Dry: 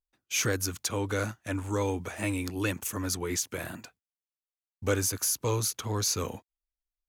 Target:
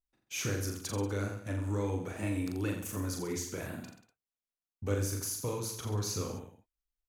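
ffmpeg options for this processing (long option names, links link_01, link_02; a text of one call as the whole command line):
ffmpeg -i in.wav -af "tiltshelf=frequency=640:gain=4,acompressor=threshold=-34dB:ratio=1.5,aecho=1:1:40|84|132.4|185.6|244.2:0.631|0.398|0.251|0.158|0.1,volume=-4dB" out.wav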